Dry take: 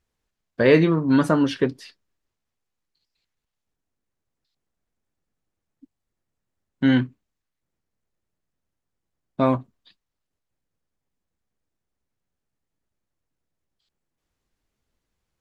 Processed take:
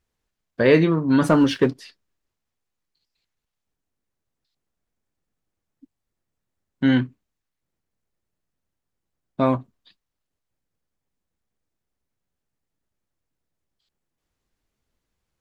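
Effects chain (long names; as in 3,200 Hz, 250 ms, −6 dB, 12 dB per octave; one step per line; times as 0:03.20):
0:01.22–0:01.77: leveller curve on the samples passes 1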